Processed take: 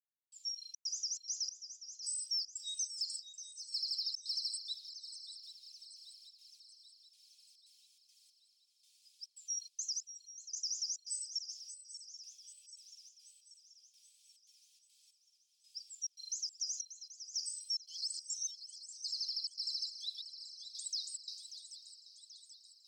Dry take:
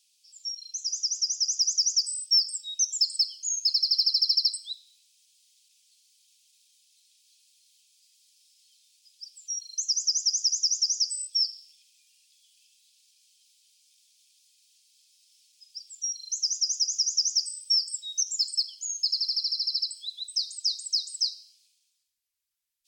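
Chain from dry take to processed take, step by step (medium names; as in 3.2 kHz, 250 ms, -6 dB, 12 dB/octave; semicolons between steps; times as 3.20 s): 10.55–11.55 s: gate -33 dBFS, range -12 dB; 17.77–18.88 s: reverse; peak limiter -24.5 dBFS, peak gain reduction 10.5 dB; trance gate "...xxxx.xxx.xx.." 141 bpm -60 dB; shuffle delay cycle 783 ms, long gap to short 3:1, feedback 54%, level -12 dB; trim -6 dB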